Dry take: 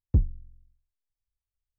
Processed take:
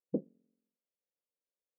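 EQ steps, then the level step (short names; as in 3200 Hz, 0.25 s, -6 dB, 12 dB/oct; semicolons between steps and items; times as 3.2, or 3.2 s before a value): brick-wall FIR high-pass 170 Hz; synth low-pass 520 Hz, resonance Q 4.9; -2.0 dB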